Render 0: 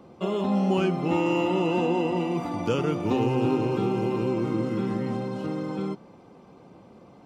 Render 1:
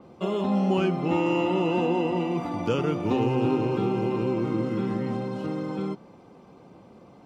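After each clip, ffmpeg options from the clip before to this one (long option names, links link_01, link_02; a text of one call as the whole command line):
ffmpeg -i in.wav -af "adynamicequalizer=threshold=0.00355:dfrequency=5300:dqfactor=0.7:tfrequency=5300:tqfactor=0.7:attack=5:release=100:ratio=0.375:range=3:mode=cutabove:tftype=highshelf" out.wav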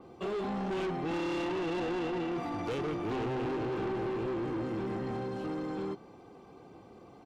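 ffmpeg -i in.wav -af "aecho=1:1:2.6:0.4,asoftclip=type=tanh:threshold=-28.5dB,volume=-2.5dB" out.wav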